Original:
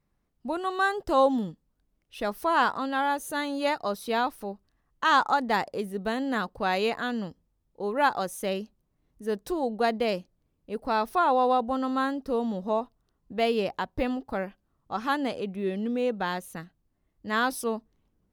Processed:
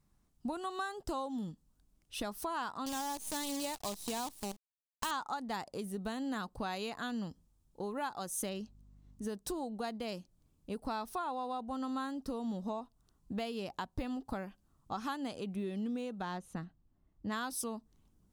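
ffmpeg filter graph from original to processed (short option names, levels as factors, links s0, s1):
-filter_complex "[0:a]asettb=1/sr,asplit=3[s0][s1][s2];[s0]atrim=end=2.864[s3];[s1]atrim=start=2.86:end=5.11,asetpts=PTS-STARTPTS,afade=t=in:d=0.004:c=qsin,afade=t=out:st=2.246:d=0.004:c=qsin,acrusher=bits=6:dc=4:mix=0:aa=0.000001,equalizer=f=1400:w=2.9:g=-9.5[s4];[s2]atrim=start=5.106[s5];[s3][s4]acrossfade=d=0.004:c1=hsin:c2=qsin[s6];[s6][s5]acrossfade=d=0.004:c1=qsin:c2=hsin,asettb=1/sr,asplit=3[s7][s8][s9];[s7]atrim=end=8.494[s10];[s8]atrim=start=8.49:end=9.27,asetpts=PTS-STARTPTS,afade=t=in:d=0.004:c=qsin,afade=t=out:st=0.776:d=0.004:c=qsin,equalizer=f=12000:w=1.2:g=-10.5,aeval=exprs='val(0)+0.000891*(sin(2*PI*50*n/s)+sin(2*PI*2*50*n/s)/2+sin(2*PI*3*50*n/s)/3+sin(2*PI*4*50*n/s)/4+sin(2*PI*5*50*n/s)/5)':c=same[s11];[s9]atrim=start=9.266[s12];[s10][s11]acrossfade=d=0.004:c1=hsin:c2=qsin[s13];[s13][s12]acrossfade=d=0.004:c1=qsin:c2=hsin,asettb=1/sr,asplit=3[s14][s15][s16];[s14]atrim=end=16.224[s17];[s15]atrim=start=16.22:end=17.32,asetpts=PTS-STARTPTS,afade=t=in:d=0.004:c=qsin,afade=t=out:st=1.096:d=0.004:c=qsin,equalizer=f=5200:w=0.39:g=-6.5,adynamicsmooth=sensitivity=6:basefreq=5300[s18];[s16]atrim=start=17.316[s19];[s17][s18]acrossfade=d=0.004:c1=hsin:c2=qsin[s20];[s20][s19]acrossfade=d=0.004:c1=qsin:c2=hsin,acompressor=threshold=0.0158:ratio=5,equalizer=f=500:t=o:w=1:g=-7,equalizer=f=2000:t=o:w=1:g=-6,equalizer=f=8000:t=o:w=1:g=6,volume=1.41"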